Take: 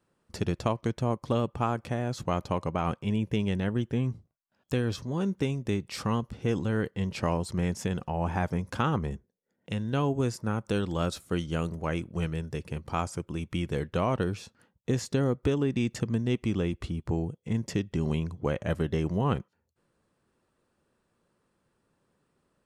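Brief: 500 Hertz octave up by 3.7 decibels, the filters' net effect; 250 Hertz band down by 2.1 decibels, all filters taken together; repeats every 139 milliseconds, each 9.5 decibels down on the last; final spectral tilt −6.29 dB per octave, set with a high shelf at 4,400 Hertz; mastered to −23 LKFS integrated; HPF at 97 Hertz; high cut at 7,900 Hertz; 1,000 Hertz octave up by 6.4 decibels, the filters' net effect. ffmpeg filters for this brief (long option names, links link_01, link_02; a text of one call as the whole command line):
ffmpeg -i in.wav -af "highpass=97,lowpass=7900,equalizer=frequency=250:width_type=o:gain=-4,equalizer=frequency=500:width_type=o:gain=4,equalizer=frequency=1000:width_type=o:gain=7.5,highshelf=frequency=4400:gain=-7,aecho=1:1:139|278|417|556:0.335|0.111|0.0365|0.012,volume=6dB" out.wav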